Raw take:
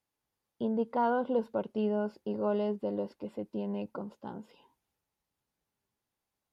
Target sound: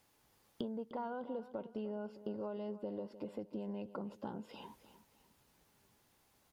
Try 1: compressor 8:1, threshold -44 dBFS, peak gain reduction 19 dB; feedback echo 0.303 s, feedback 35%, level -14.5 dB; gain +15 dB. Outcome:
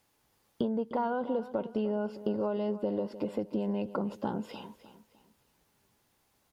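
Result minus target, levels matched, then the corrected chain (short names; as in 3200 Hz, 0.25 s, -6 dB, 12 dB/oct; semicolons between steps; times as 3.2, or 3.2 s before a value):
compressor: peak gain reduction -10.5 dB
compressor 8:1, threshold -56 dBFS, peak gain reduction 29.5 dB; feedback echo 0.303 s, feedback 35%, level -14.5 dB; gain +15 dB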